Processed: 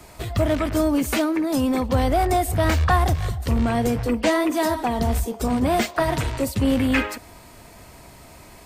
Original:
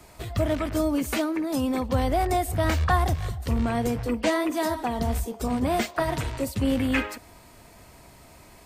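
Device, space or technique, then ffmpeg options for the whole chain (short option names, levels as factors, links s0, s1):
parallel distortion: -filter_complex "[0:a]asplit=2[s0][s1];[s1]asoftclip=type=hard:threshold=0.0668,volume=0.501[s2];[s0][s2]amix=inputs=2:normalize=0,volume=1.19"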